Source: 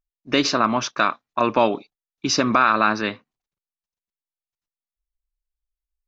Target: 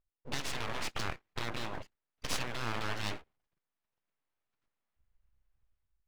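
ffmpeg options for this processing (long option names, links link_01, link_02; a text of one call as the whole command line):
ffmpeg -i in.wav -filter_complex "[0:a]aeval=exprs='(tanh(3.16*val(0)+0.75)-tanh(0.75))/3.16':channel_layout=same,lowpass=2100,dynaudnorm=framelen=470:gausssize=3:maxgain=10.5dB,asplit=2[link_01][link_02];[link_02]alimiter=limit=-12.5dB:level=0:latency=1:release=31,volume=-0.5dB[link_03];[link_01][link_03]amix=inputs=2:normalize=0,acompressor=threshold=-19dB:ratio=20,afftfilt=real='re*lt(hypot(re,im),0.126)':imag='im*lt(hypot(re,im),0.126)':win_size=1024:overlap=0.75,aeval=exprs='abs(val(0))':channel_layout=same" out.wav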